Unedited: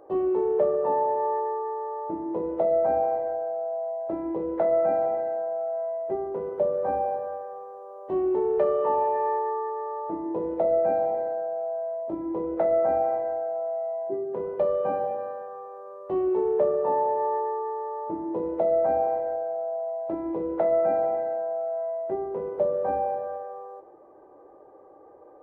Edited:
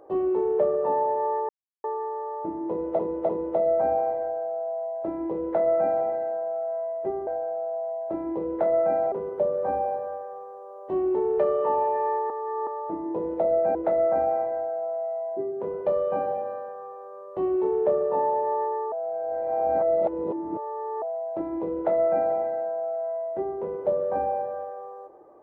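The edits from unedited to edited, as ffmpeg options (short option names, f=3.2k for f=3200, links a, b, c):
-filter_complex "[0:a]asplit=11[a][b][c][d][e][f][g][h][i][j][k];[a]atrim=end=1.49,asetpts=PTS-STARTPTS,afade=t=out:st=1.486:d=0.004:c=hsin,apad=pad_dur=0.35[l];[b]atrim=start=1.49:end=2.642,asetpts=PTS-STARTPTS,afade=t=in:d=0.004:c=hsin[m];[c]atrim=start=2.338:end=2.642[n];[d]atrim=start=2.338:end=6.322[o];[e]atrim=start=3.258:end=5.112[p];[f]atrim=start=6.318:end=9.502[q];[g]atrim=start=9.498:end=9.872,asetpts=PTS-STARTPTS,areverse[r];[h]atrim=start=9.868:end=10.952[s];[i]atrim=start=12.478:end=17.652[t];[j]atrim=start=17.648:end=19.752,asetpts=PTS-STARTPTS,areverse[u];[k]atrim=start=19.748[v];[l][m]concat=n=2:v=0:a=1[w];[w][n]acrossfade=d=0.004:c1=hsin:c2=hsin[x];[x][o]acrossfade=d=0.004:c1=hsin:c2=hsin[y];[y][p]acrossfade=d=0.004:c1=hsin:c2=hsin[z];[z][q]acrossfade=d=0.004:c1=hsin:c2=hsin[aa];[aa][r]acrossfade=d=0.004:c1=hsin:c2=hsin[ab];[ab][s]acrossfade=d=0.004:c1=hsin:c2=hsin[ac];[ac][t]acrossfade=d=0.004:c1=hsin:c2=hsin[ad];[ad][u]acrossfade=d=0.004:c1=hsin:c2=hsin[ae];[ae][v]acrossfade=d=0.004:c1=hsin:c2=hsin"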